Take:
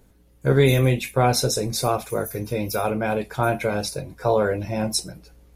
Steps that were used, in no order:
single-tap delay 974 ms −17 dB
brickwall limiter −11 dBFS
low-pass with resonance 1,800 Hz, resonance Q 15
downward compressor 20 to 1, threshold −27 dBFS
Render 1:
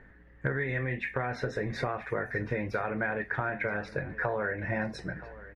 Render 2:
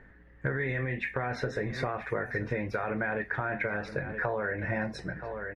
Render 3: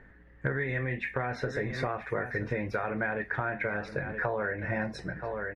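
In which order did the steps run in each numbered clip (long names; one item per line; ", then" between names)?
brickwall limiter, then low-pass with resonance, then downward compressor, then single-tap delay
low-pass with resonance, then brickwall limiter, then single-tap delay, then downward compressor
single-tap delay, then brickwall limiter, then low-pass with resonance, then downward compressor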